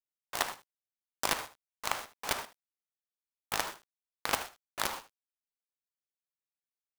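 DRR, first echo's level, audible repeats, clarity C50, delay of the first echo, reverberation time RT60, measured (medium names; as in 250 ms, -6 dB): no reverb, -15.0 dB, 1, no reverb, 77 ms, no reverb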